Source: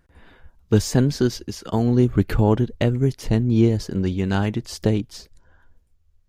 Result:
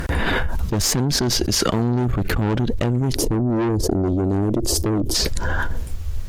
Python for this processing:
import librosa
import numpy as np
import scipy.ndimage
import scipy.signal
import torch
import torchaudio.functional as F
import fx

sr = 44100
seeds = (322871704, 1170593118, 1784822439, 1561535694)

y = fx.curve_eq(x, sr, hz=(100.0, 160.0, 330.0, 2000.0, 9900.0), db=(0, -7, 8, -24, -5), at=(3.14, 5.14), fade=0.02)
y = fx.tube_stage(y, sr, drive_db=20.0, bias=0.75)
y = fx.env_flatten(y, sr, amount_pct=100)
y = F.gain(torch.from_numpy(y), 1.5).numpy()